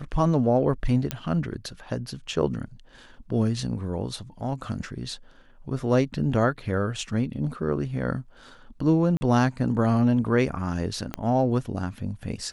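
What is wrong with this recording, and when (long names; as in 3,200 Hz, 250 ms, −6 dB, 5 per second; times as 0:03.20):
0:01.11: click −10 dBFS
0:09.17–0:09.21: drop-out 40 ms
0:11.14: click −14 dBFS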